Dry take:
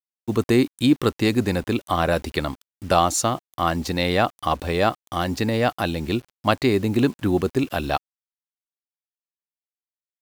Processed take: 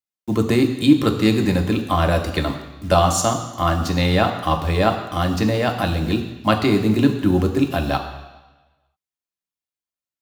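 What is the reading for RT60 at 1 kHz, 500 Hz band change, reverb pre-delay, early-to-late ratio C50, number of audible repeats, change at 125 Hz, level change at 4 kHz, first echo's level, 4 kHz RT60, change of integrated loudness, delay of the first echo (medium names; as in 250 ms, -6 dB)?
1.1 s, +1.5 dB, 3 ms, 8.5 dB, no echo, +5.5 dB, +2.0 dB, no echo, 1.2 s, +3.0 dB, no echo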